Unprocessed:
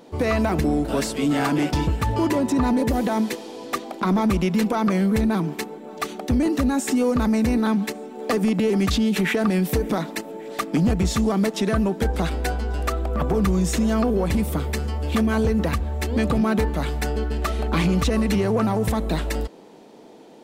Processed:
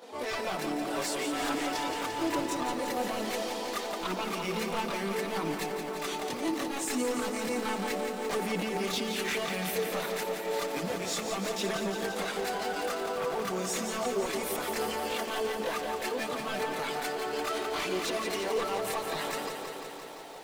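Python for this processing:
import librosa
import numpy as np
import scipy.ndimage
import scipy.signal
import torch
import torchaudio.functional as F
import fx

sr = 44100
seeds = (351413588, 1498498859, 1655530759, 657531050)

p1 = scipy.signal.sosfilt(scipy.signal.butter(2, 520.0, 'highpass', fs=sr, output='sos'), x)
p2 = fx.over_compress(p1, sr, threshold_db=-38.0, ratio=-1.0)
p3 = p1 + (p2 * librosa.db_to_amplitude(-0.5))
p4 = 10.0 ** (-20.5 / 20.0) * (np.abs((p3 / 10.0 ** (-20.5 / 20.0) + 3.0) % 4.0 - 2.0) - 1.0)
p5 = fx.chorus_voices(p4, sr, voices=4, hz=0.16, base_ms=24, depth_ms=4.2, mix_pct=65)
p6 = fx.echo_crushed(p5, sr, ms=172, feedback_pct=80, bits=9, wet_db=-7)
y = p6 * librosa.db_to_amplitude(-3.5)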